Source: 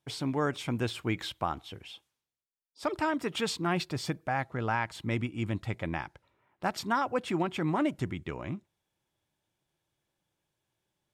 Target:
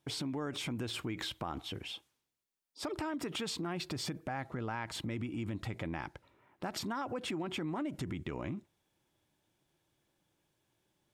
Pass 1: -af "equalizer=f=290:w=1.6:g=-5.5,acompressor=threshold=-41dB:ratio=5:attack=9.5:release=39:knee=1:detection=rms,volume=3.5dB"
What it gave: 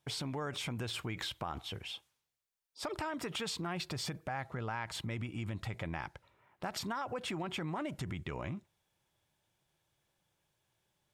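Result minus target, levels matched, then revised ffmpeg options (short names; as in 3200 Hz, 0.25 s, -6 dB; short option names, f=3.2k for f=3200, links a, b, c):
250 Hz band -3.0 dB
-af "equalizer=f=290:w=1.6:g=4.5,acompressor=threshold=-41dB:ratio=5:attack=9.5:release=39:knee=1:detection=rms,volume=3.5dB"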